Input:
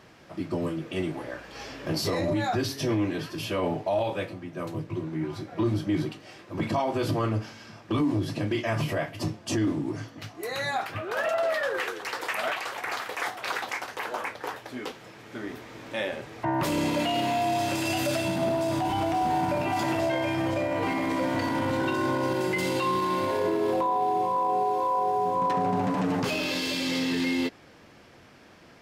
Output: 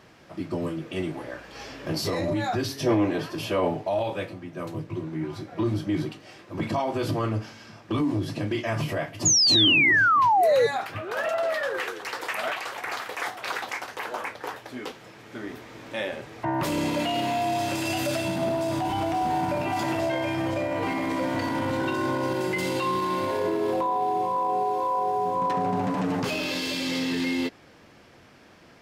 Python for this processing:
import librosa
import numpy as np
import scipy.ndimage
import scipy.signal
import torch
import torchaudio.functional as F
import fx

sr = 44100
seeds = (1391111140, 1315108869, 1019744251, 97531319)

y = fx.peak_eq(x, sr, hz=700.0, db=fx.line((2.85, 10.5), (3.69, 4.5)), octaves=1.9, at=(2.85, 3.69), fade=0.02)
y = fx.spec_paint(y, sr, seeds[0], shape='fall', start_s=9.25, length_s=1.42, low_hz=440.0, high_hz=7000.0, level_db=-19.0)